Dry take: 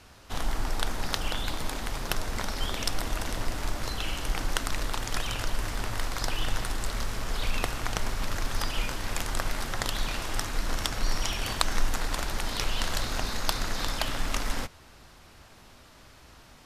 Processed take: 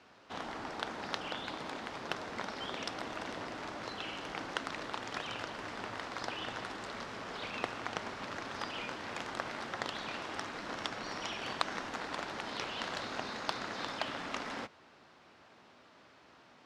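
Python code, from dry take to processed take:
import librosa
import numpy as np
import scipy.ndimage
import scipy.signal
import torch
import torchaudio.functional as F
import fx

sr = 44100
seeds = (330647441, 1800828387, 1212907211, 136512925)

y = fx.bandpass_edges(x, sr, low_hz=220.0, high_hz=5800.0)
y = fx.high_shelf(y, sr, hz=4500.0, db=-10.5)
y = y * 10.0 ** (-3.5 / 20.0)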